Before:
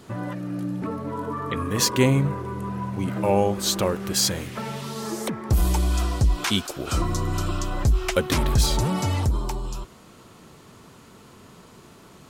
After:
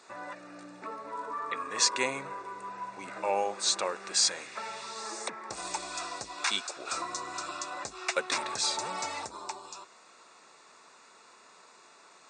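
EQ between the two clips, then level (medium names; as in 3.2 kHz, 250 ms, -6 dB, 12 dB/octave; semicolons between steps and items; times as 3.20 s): high-pass 730 Hz 12 dB/octave; Butterworth band-stop 3.1 kHz, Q 6.5; brick-wall FIR low-pass 9.1 kHz; -2.5 dB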